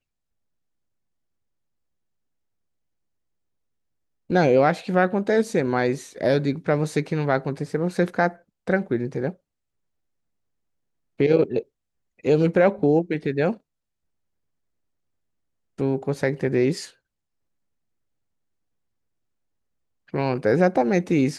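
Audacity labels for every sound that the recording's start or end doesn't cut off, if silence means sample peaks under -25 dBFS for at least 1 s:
4.300000	9.300000	sound
11.200000	13.520000	sound
15.800000	16.820000	sound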